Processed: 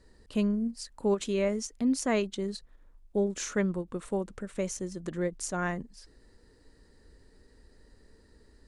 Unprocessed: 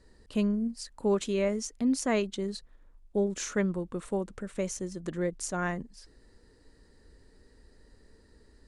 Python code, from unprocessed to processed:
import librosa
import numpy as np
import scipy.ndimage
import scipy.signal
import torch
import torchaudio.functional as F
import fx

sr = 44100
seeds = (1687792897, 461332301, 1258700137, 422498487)

y = fx.end_taper(x, sr, db_per_s=370.0)